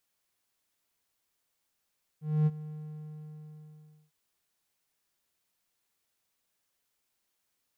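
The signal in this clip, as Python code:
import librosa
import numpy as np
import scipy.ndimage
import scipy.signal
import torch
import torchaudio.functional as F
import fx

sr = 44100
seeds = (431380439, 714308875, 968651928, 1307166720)

y = fx.adsr_tone(sr, wave='triangle', hz=153.0, attack_ms=256.0, decay_ms=36.0, sustain_db=-17.5, held_s=0.48, release_ms=1420.0, level_db=-18.5)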